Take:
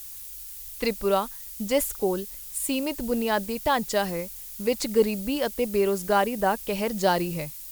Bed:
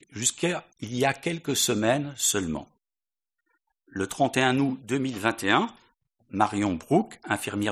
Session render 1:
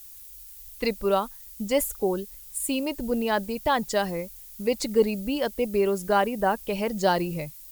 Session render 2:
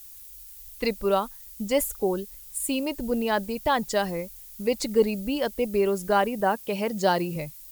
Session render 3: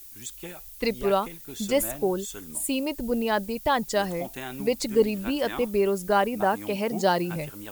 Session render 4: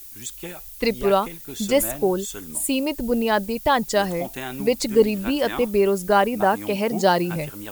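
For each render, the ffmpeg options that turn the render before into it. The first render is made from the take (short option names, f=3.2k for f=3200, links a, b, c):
-af "afftdn=nr=7:nf=-40"
-filter_complex "[0:a]asettb=1/sr,asplit=3[a][b][c];[a]atrim=end=6.414[d];[b]atrim=start=6.41:end=7.36,asetpts=PTS-STARTPTS,afade=t=in:d=0.004:c=qsin,afade=t=out:st=0.946:d=0.004:c=qsin,highpass=100[e];[c]atrim=start=7.356[f];[d][e]acrossfade=d=0.004:c1=hsin:c2=qsin[g];[g][f]acrossfade=d=0.004:c1=qsin:c2=hsin"
-filter_complex "[1:a]volume=-14.5dB[a];[0:a][a]amix=inputs=2:normalize=0"
-af "volume=4.5dB"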